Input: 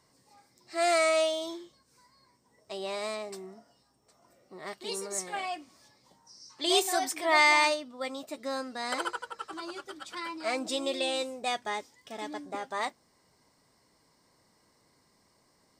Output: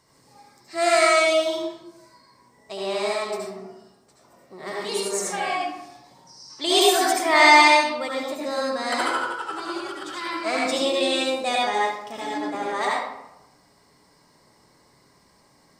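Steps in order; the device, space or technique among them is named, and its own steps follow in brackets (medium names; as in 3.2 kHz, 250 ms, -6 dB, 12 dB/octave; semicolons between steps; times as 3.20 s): bathroom (reverberation RT60 0.90 s, pre-delay 66 ms, DRR -4 dB); trim +4 dB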